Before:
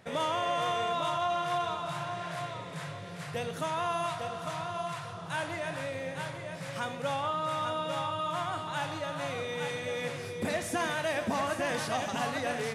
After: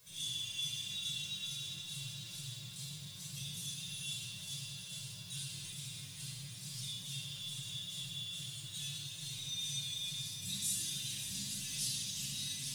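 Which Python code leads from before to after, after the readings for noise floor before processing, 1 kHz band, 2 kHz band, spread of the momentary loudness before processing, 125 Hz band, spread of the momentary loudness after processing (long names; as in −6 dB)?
−41 dBFS, −37.0 dB, −15.5 dB, 8 LU, −5.5 dB, 8 LU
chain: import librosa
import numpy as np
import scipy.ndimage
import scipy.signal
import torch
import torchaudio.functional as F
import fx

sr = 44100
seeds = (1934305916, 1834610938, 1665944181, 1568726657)

p1 = scipy.signal.sosfilt(scipy.signal.cheby1(3, 1.0, [160.0, 3400.0], 'bandstop', fs=sr, output='sos'), x)
p2 = fx.bass_treble(p1, sr, bass_db=-6, treble_db=12)
p3 = fx.quant_dither(p2, sr, seeds[0], bits=8, dither='triangular')
p4 = p2 + (p3 * librosa.db_to_amplitude(-6.0))
p5 = fx.stiff_resonator(p4, sr, f0_hz=65.0, decay_s=0.26, stiffness=0.002)
p6 = p5 + 10.0 ** (-10.5 / 20.0) * np.pad(p5, (int(570 * sr / 1000.0), 0))[:len(p5)]
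p7 = fx.room_shoebox(p6, sr, seeds[1], volume_m3=2900.0, walls='mixed', distance_m=5.4)
y = p7 * librosa.db_to_amplitude(-6.0)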